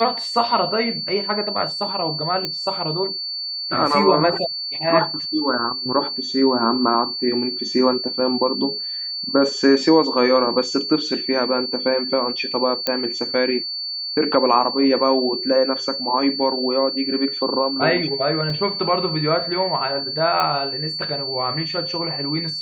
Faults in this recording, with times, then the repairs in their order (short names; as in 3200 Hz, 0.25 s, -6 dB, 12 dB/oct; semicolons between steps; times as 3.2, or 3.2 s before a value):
tone 4500 Hz -25 dBFS
2.45 pop -9 dBFS
12.87 pop -5 dBFS
18.5 gap 2.6 ms
20.4 pop -8 dBFS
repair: de-click; notch 4500 Hz, Q 30; interpolate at 18.5, 2.6 ms